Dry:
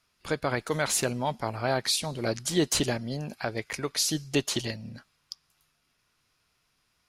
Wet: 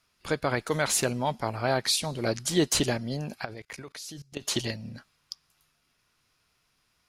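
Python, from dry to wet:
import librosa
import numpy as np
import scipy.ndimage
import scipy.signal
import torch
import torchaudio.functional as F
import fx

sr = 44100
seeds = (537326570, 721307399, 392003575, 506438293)

y = fx.level_steps(x, sr, step_db=21, at=(3.44, 4.41), fade=0.02)
y = y * 10.0 ** (1.0 / 20.0)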